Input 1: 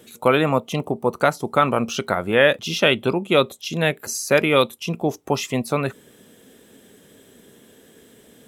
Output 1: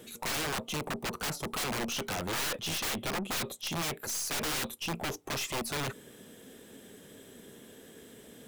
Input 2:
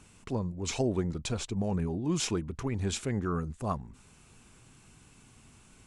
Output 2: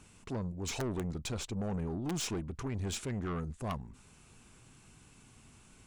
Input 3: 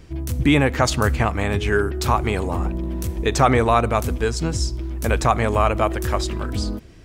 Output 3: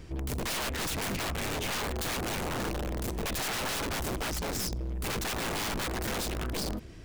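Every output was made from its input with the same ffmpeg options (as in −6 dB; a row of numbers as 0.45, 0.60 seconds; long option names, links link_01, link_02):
-af "aeval=exprs='(mod(9.44*val(0)+1,2)-1)/9.44':channel_layout=same,aeval=exprs='(tanh(31.6*val(0)+0.25)-tanh(0.25))/31.6':channel_layout=same,volume=-1dB"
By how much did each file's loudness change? −12.5, −5.0, −11.5 LU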